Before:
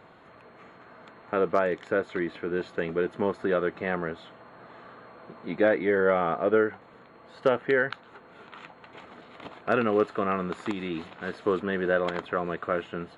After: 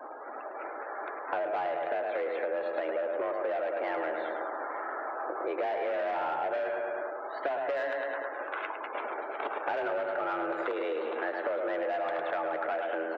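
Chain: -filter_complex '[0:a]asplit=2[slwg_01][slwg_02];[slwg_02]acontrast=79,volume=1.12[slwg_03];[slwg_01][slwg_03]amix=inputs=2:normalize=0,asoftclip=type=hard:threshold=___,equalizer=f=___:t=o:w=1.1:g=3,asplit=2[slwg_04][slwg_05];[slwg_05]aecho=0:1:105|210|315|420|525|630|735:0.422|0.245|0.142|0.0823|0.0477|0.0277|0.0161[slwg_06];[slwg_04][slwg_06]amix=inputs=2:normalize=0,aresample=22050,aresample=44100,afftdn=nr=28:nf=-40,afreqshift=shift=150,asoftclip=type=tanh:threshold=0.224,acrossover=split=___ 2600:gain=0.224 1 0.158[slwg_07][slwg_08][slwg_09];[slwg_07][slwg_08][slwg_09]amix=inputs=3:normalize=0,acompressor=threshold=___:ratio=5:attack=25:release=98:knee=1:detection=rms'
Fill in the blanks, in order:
0.211, 560, 310, 0.0251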